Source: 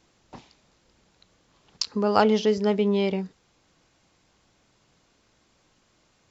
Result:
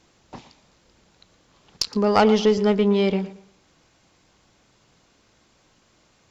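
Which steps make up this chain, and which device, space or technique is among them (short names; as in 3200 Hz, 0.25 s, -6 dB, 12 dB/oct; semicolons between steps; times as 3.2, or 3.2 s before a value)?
rockabilly slapback (tube stage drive 10 dB, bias 0.3; tape echo 0.116 s, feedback 31%, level -14 dB, low-pass 4000 Hz); gain +5 dB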